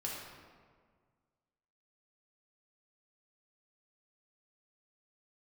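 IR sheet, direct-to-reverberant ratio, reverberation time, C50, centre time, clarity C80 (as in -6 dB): -4.5 dB, 1.8 s, 0.0 dB, 85 ms, 2.0 dB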